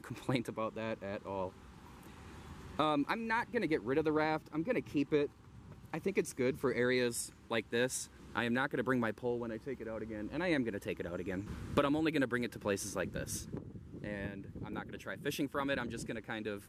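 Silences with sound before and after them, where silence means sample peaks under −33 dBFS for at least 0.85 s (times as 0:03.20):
0:01.48–0:02.79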